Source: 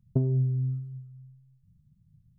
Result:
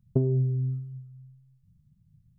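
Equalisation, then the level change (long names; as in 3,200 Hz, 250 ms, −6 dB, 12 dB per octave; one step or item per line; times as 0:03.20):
dynamic equaliser 400 Hz, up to +6 dB, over −48 dBFS, Q 1.9
0.0 dB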